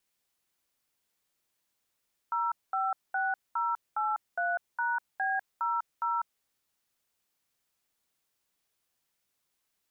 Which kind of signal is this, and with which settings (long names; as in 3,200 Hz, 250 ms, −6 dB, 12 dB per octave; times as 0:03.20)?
touch tones "056083#B00", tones 198 ms, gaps 213 ms, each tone −29.5 dBFS